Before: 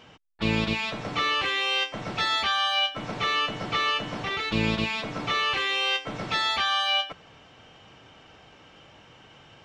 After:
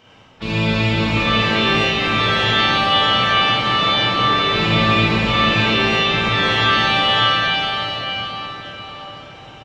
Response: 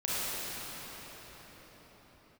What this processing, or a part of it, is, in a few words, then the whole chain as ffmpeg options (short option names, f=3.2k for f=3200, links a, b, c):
cathedral: -filter_complex "[1:a]atrim=start_sample=2205[a];[0:a][a]afir=irnorm=-1:irlink=0,asettb=1/sr,asplit=3[b][c][d];[b]atrim=end=5.754[e];[c]atrim=start=5.75:end=6.43,asetpts=PTS-STARTPTS,afade=t=in:d=0.004:c=qsin,afade=t=out:st=0.676:d=0.004:c=qsin,lowpass=7.9k[f];[d]atrim=start=6.426[g];[e][f]acrossfade=d=0.004:c1=hsin:c2=qsin[h];[h][g]acrossfade=d=0.004:c1=qsin:c2=hsin,acrossover=split=5100[i][j];[j]acompressor=threshold=-39dB:ratio=4:attack=1:release=60[k];[i][k]amix=inputs=2:normalize=0,equalizer=f=110:w=5.2:g=4,aecho=1:1:585:0.531"